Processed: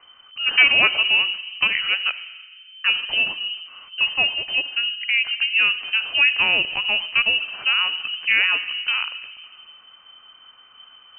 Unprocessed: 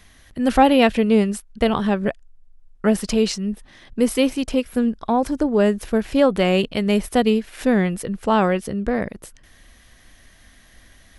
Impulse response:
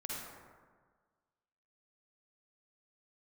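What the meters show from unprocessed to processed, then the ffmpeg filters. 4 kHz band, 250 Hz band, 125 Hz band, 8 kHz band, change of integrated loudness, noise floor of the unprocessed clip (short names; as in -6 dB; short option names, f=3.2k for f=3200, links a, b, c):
+13.0 dB, -28.0 dB, under -20 dB, under -40 dB, +1.5 dB, -51 dBFS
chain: -filter_complex "[0:a]equalizer=f=230:t=o:w=0.91:g=-6.5,asplit=2[a][b];[1:a]atrim=start_sample=2205,lowshelf=f=350:g=8.5[c];[b][c]afir=irnorm=-1:irlink=0,volume=-13.5dB[d];[a][d]amix=inputs=2:normalize=0,lowpass=f=2.6k:t=q:w=0.5098,lowpass=f=2.6k:t=q:w=0.6013,lowpass=f=2.6k:t=q:w=0.9,lowpass=f=2.6k:t=q:w=2.563,afreqshift=-3100,volume=-1dB"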